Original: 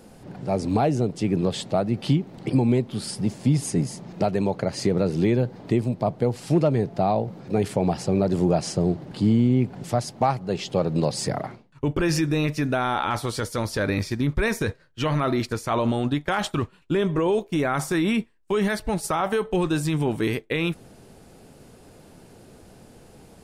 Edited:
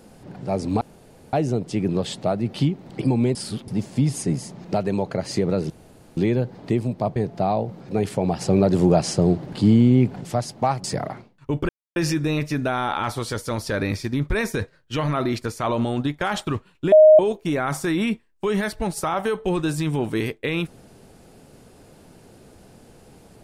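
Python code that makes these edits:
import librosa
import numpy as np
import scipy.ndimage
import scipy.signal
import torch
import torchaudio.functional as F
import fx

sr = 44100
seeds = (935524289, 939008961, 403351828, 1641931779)

y = fx.edit(x, sr, fx.insert_room_tone(at_s=0.81, length_s=0.52),
    fx.reverse_span(start_s=2.83, length_s=0.33),
    fx.insert_room_tone(at_s=5.18, length_s=0.47),
    fx.cut(start_s=6.17, length_s=0.58),
    fx.clip_gain(start_s=8.0, length_s=1.8, db=4.0),
    fx.cut(start_s=10.43, length_s=0.75),
    fx.insert_silence(at_s=12.03, length_s=0.27),
    fx.bleep(start_s=16.99, length_s=0.27, hz=621.0, db=-6.5), tone=tone)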